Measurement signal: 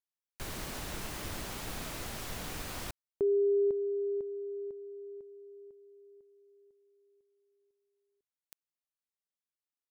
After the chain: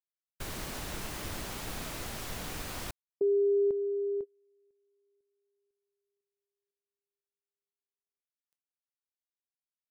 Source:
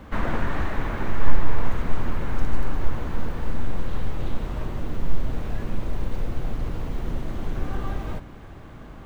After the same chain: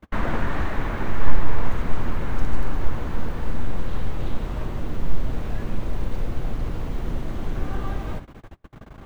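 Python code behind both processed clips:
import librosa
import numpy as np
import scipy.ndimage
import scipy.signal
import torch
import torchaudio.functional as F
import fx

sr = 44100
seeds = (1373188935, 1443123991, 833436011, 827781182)

y = fx.gate_hold(x, sr, open_db=-33.0, close_db=-34.0, hold_ms=16.0, range_db=-31, attack_ms=4.8, release_ms=30.0)
y = F.gain(torch.from_numpy(y), 1.0).numpy()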